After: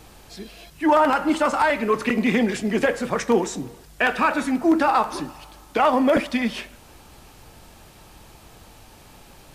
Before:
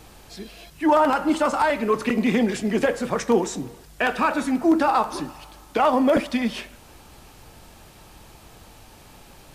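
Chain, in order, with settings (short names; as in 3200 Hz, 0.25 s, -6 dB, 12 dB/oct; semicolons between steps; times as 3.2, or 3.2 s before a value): dynamic EQ 2000 Hz, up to +4 dB, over -35 dBFS, Q 1.2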